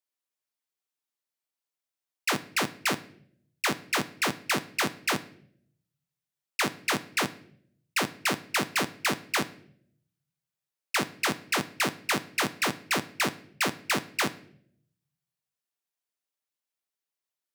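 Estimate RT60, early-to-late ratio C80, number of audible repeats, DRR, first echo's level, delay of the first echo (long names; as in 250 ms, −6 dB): 0.65 s, 20.5 dB, no echo audible, 10.5 dB, no echo audible, no echo audible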